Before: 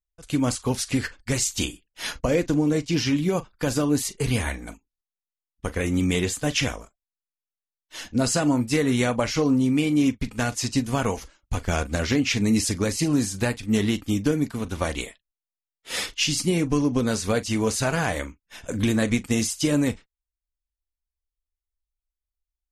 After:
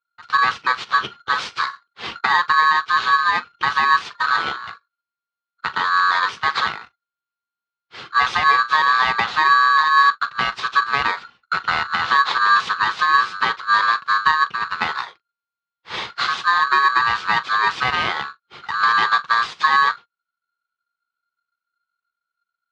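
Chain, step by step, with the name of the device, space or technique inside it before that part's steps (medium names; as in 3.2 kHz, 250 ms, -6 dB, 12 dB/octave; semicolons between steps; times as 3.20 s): ring modulator pedal into a guitar cabinet (polarity switched at an audio rate 1.4 kHz; cabinet simulation 93–4000 Hz, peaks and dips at 280 Hz -8 dB, 610 Hz -7 dB, 1.1 kHz +6 dB); trim +3.5 dB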